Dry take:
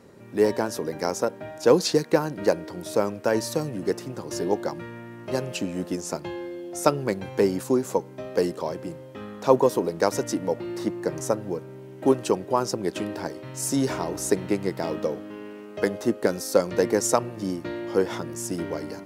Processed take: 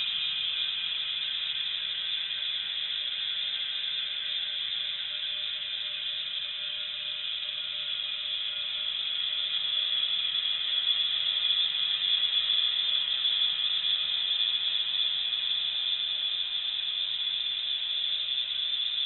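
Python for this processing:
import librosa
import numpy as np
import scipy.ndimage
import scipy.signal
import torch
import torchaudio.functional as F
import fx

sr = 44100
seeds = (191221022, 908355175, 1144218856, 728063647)

y = fx.echo_heads(x, sr, ms=192, heads='all three', feedback_pct=61, wet_db=-12.0)
y = fx.paulstretch(y, sr, seeds[0], factor=28.0, window_s=0.5, from_s=6.99)
y = fx.freq_invert(y, sr, carrier_hz=3800)
y = y * librosa.db_to_amplitude(-6.5)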